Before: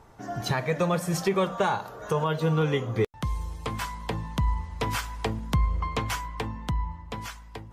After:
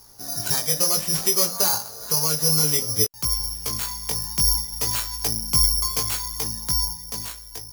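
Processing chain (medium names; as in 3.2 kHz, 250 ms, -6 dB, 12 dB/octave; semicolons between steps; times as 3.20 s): careless resampling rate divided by 8×, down none, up zero stuff; chorus 0.59 Hz, delay 17 ms, depth 3.2 ms; trim -1.5 dB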